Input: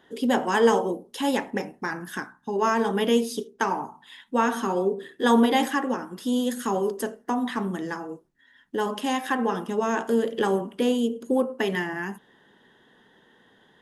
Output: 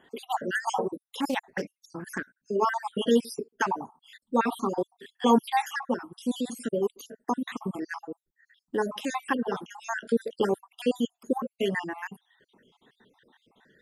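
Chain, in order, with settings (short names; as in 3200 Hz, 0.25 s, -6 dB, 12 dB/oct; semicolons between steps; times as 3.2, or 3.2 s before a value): random spectral dropouts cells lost 58%; reverb removal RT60 0.66 s; 1.09–2.36 Doppler distortion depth 0.14 ms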